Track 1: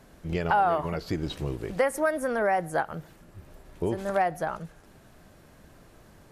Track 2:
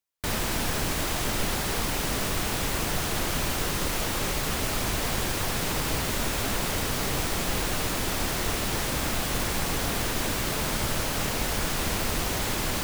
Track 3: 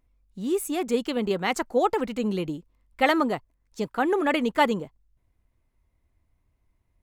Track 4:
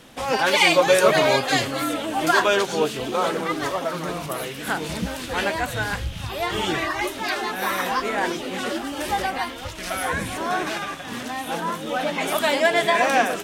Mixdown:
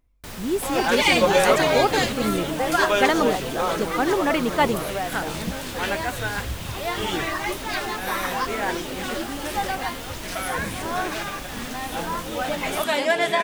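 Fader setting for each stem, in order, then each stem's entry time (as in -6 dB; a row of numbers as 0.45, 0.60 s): -4.0, -9.0, +1.0, -2.0 dB; 0.80, 0.00, 0.00, 0.45 s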